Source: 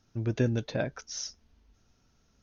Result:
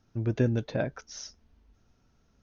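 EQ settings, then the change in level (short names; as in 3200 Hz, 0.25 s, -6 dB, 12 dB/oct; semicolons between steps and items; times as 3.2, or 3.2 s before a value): high shelf 3000 Hz -8.5 dB; +1.5 dB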